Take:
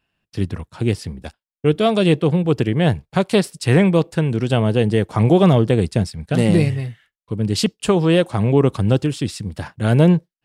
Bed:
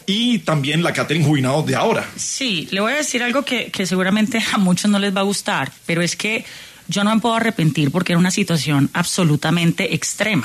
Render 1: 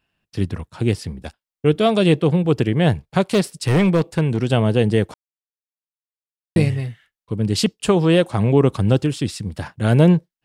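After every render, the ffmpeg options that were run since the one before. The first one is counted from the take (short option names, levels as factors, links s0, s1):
-filter_complex "[0:a]asettb=1/sr,asplit=3[s0][s1][s2];[s0]atrim=end=3.284[s3];[s1]atrim=start=3.28:end=4.41,asetpts=PTS-STARTPTS,afade=t=in:d=0.004:c=qsin,afade=t=out:st=1.126:d=0.004:c=qsin,volume=3.76,asoftclip=hard,volume=0.266[s4];[s2]atrim=start=4.406[s5];[s3][s4]acrossfade=d=0.004:c1=hsin:c2=qsin[s6];[s6][s5]acrossfade=d=0.004:c1=qsin:c2=hsin,asplit=3[s7][s8][s9];[s7]atrim=end=5.14,asetpts=PTS-STARTPTS,afade=t=out:st=5.136:d=0.004:c=hsin[s10];[s8]atrim=start=5.14:end=6.56,asetpts=PTS-STARTPTS,volume=0[s11];[s9]atrim=start=6.56,asetpts=PTS-STARTPTS,afade=t=in:d=0.004:c=hsin[s12];[s10][s11][s12]concat=n=3:v=0:a=1"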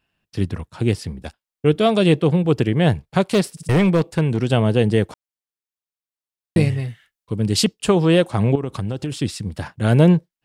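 -filter_complex "[0:a]asettb=1/sr,asplit=3[s0][s1][s2];[s0]atrim=end=6.884[s3];[s1]atrim=start=6.88:end=7.65,asetpts=PTS-STARTPTS,afade=t=in:d=0.004:c=qsin,afade=t=out:st=0.766:d=0.004:c=qsin,highshelf=f=4000:g=5[s4];[s2]atrim=start=7.646[s5];[s3][s4]acrossfade=d=0.004:c1=hsin:c2=qsin[s6];[s6][s5]acrossfade=d=0.004:c1=qsin:c2=hsin,asettb=1/sr,asplit=3[s7][s8][s9];[s7]atrim=end=8.554[s10];[s8]atrim=start=8.55:end=9.12,asetpts=PTS-STARTPTS,afade=t=in:d=0.004:c=qsin,afade=t=out:st=0.566:d=0.004:c=qsin,acompressor=threshold=0.1:ratio=12:attack=3.2:release=140:knee=1:detection=peak[s11];[s9]atrim=start=9.116[s12];[s10][s11]acrossfade=d=0.004:c1=hsin:c2=qsin[s13];[s13][s12]acrossfade=d=0.004:c1=qsin:c2=hsin,asplit=4[s14][s15][s16][s17];[s14]atrim=end=3.572[s18];[s15]atrim=start=3.508:end=3.572[s19];[s16]atrim=start=3.508:end=3.572[s20];[s17]atrim=start=3.688[s21];[s18][s19]acrossfade=d=0.004:c1=hsin:c2=hsin[s22];[s22][s20]acrossfade=d=0.004:c1=hsin:c2=hsin[s23];[s23][s21]acrossfade=d=0.004:c1=hsin:c2=hsin"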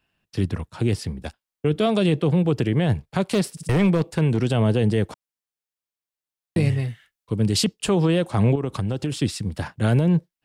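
-filter_complex "[0:a]acrossover=split=220[s0][s1];[s1]acompressor=threshold=0.158:ratio=6[s2];[s0][s2]amix=inputs=2:normalize=0,alimiter=limit=0.266:level=0:latency=1:release=22"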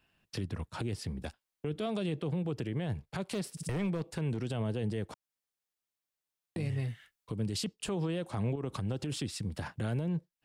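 -af "acompressor=threshold=0.02:ratio=2.5,alimiter=level_in=1.26:limit=0.0631:level=0:latency=1:release=74,volume=0.794"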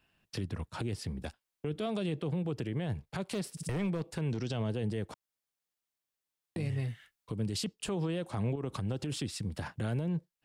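-filter_complex "[0:a]asettb=1/sr,asplit=3[s0][s1][s2];[s0]atrim=end=4.294[s3];[s1]atrim=start=4.29:end=4.7,asetpts=PTS-STARTPTS,afade=t=in:d=0.004:c=qsin,afade=t=out:st=0.406:d=0.004:c=qsin,lowpass=f=5700:t=q:w=3[s4];[s2]atrim=start=4.696[s5];[s3][s4]acrossfade=d=0.004:c1=hsin:c2=qsin[s6];[s6][s5]acrossfade=d=0.004:c1=qsin:c2=hsin"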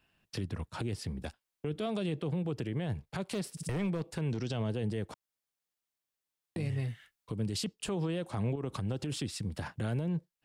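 -af anull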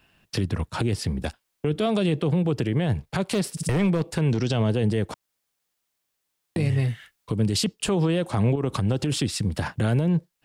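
-af "volume=3.55"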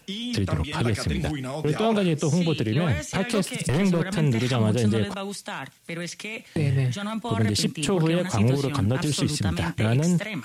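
-filter_complex "[1:a]volume=0.2[s0];[0:a][s0]amix=inputs=2:normalize=0"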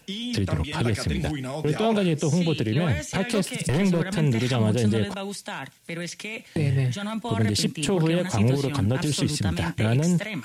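-af "bandreject=f=1200:w=8.5"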